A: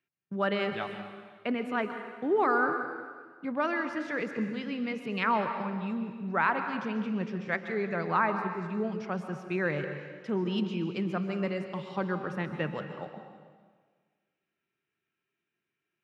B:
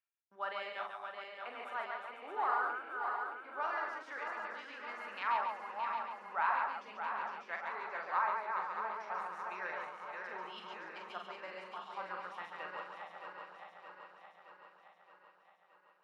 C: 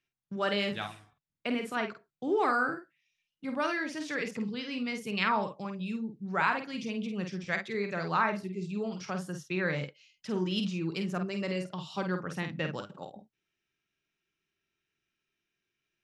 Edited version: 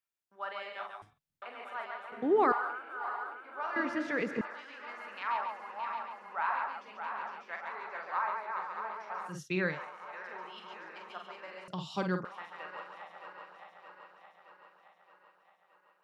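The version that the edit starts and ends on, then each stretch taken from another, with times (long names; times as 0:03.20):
B
0:01.02–0:01.42: punch in from C
0:02.12–0:02.52: punch in from A
0:03.76–0:04.41: punch in from A
0:09.32–0:09.72: punch in from C, crossfade 0.16 s
0:11.68–0:12.25: punch in from C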